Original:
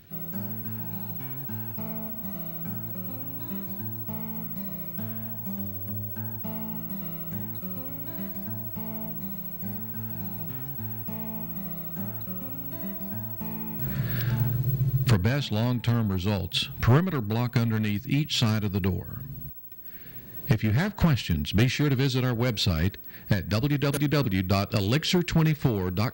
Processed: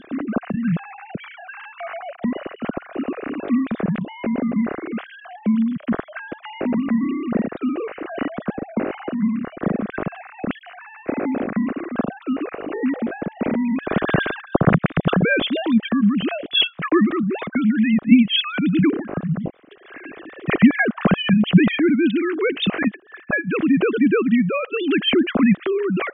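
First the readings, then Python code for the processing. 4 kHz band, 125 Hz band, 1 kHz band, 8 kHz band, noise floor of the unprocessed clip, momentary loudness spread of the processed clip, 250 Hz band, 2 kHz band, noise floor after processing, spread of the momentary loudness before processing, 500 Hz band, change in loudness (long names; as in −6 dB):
+7.0 dB, −1.0 dB, +8.0 dB, below −35 dB, −41 dBFS, 14 LU, +11.5 dB, +11.0 dB, −46 dBFS, 8 LU, +10.0 dB, +7.0 dB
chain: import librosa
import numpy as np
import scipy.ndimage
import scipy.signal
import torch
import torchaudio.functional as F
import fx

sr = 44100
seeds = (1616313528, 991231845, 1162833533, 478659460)

y = fx.sine_speech(x, sr)
y = fx.rider(y, sr, range_db=10, speed_s=2.0)
y = fx.peak_eq(y, sr, hz=910.0, db=-11.0, octaves=0.34)
y = y * librosa.db_to_amplitude(6.0)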